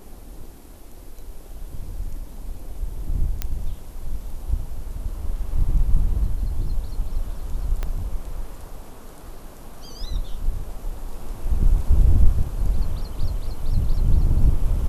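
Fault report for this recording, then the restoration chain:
3.42 pop -10 dBFS
7.83 pop -14 dBFS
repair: de-click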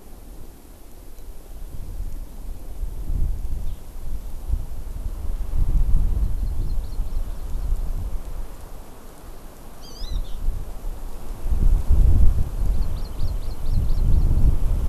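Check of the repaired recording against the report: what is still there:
3.42 pop
7.83 pop

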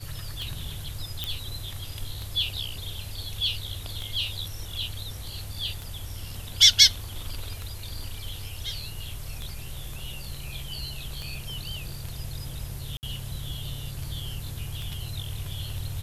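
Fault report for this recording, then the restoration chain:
tick 33 1/3 rpm
1.24 pop -13 dBFS
12.97–13.03 gap 59 ms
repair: de-click; interpolate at 12.97, 59 ms

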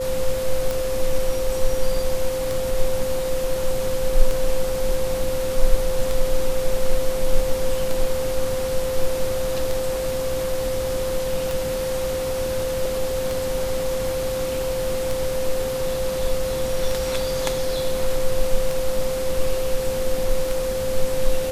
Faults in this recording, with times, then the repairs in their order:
tick 33 1/3 rpm
tone 520 Hz -23 dBFS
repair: de-click; notch 520 Hz, Q 30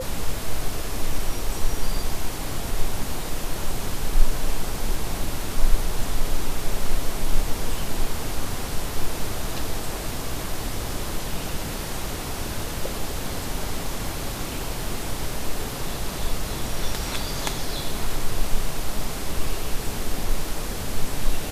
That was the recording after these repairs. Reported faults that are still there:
none

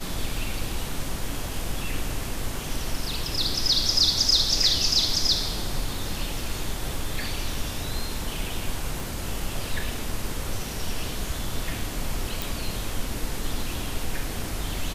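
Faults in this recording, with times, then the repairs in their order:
9 pop
12.42 pop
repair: de-click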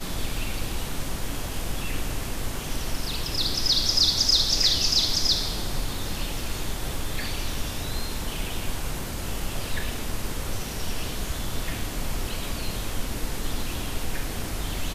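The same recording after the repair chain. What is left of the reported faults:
none

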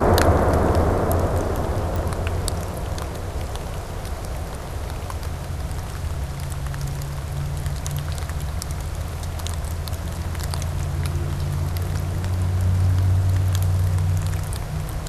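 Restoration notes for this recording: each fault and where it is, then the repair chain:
1.96 pop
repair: de-click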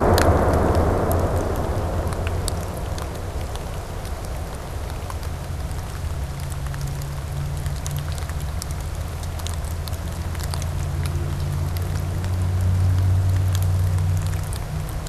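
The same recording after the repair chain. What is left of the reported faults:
none

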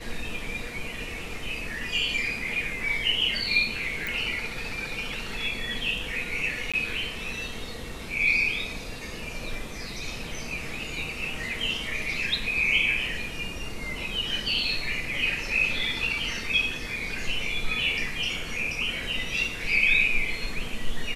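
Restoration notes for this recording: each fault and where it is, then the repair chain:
4.07 pop
6.72–6.74 gap 16 ms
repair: de-click; interpolate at 6.72, 16 ms

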